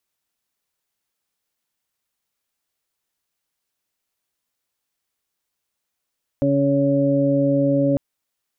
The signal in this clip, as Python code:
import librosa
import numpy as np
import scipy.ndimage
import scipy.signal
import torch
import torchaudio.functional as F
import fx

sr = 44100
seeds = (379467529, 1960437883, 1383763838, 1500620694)

y = fx.additive_steady(sr, length_s=1.55, hz=140.0, level_db=-22.5, upper_db=(4.5, -10, 3.0))